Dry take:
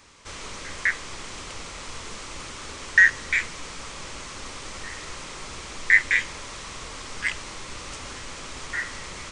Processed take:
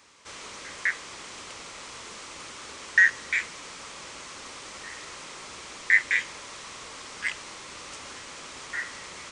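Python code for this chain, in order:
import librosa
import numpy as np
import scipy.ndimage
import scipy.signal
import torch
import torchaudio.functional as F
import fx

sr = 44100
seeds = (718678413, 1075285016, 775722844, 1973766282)

y = fx.highpass(x, sr, hz=100.0, slope=6)
y = fx.low_shelf(y, sr, hz=190.0, db=-7.5)
y = y * 10.0 ** (-3.0 / 20.0)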